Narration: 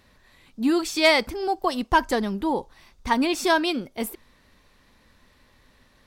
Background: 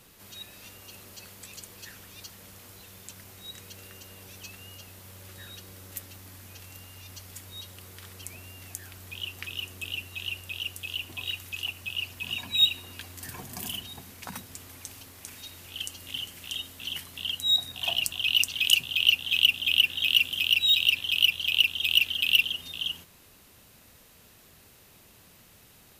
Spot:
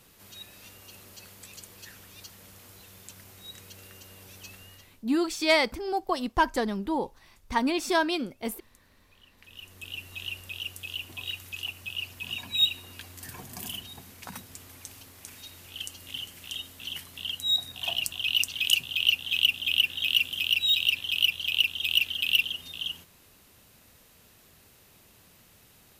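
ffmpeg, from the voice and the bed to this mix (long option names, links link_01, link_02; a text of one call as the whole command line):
ffmpeg -i stem1.wav -i stem2.wav -filter_complex "[0:a]adelay=4450,volume=-4dB[link_01];[1:a]volume=19.5dB,afade=type=out:start_time=4.54:duration=0.51:silence=0.0841395,afade=type=in:start_time=9.36:duration=0.77:silence=0.0841395[link_02];[link_01][link_02]amix=inputs=2:normalize=0" out.wav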